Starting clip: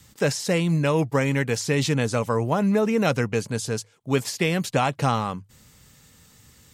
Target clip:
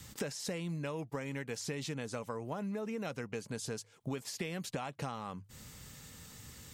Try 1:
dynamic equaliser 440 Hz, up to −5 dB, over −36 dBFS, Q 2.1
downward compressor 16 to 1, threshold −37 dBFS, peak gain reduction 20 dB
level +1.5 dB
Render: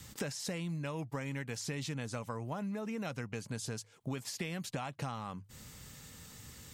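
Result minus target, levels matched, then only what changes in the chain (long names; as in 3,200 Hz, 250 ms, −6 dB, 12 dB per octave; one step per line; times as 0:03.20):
500 Hz band −3.0 dB
change: dynamic equaliser 110 Hz, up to −5 dB, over −36 dBFS, Q 2.1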